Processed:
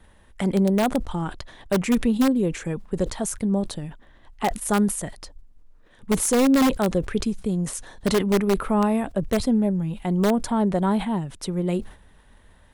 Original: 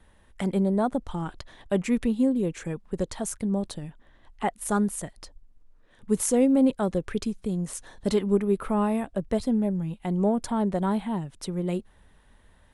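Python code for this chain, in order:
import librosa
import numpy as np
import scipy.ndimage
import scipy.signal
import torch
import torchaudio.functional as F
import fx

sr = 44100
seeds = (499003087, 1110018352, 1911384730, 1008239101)

p1 = (np.mod(10.0 ** (15.5 / 20.0) * x + 1.0, 2.0) - 1.0) / 10.0 ** (15.5 / 20.0)
p2 = x + F.gain(torch.from_numpy(p1), -5.0).numpy()
y = fx.sustainer(p2, sr, db_per_s=140.0)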